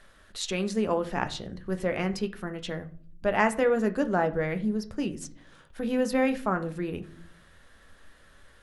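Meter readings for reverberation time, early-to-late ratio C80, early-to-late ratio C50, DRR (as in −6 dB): 0.50 s, 20.0 dB, 16.0 dB, 7.5 dB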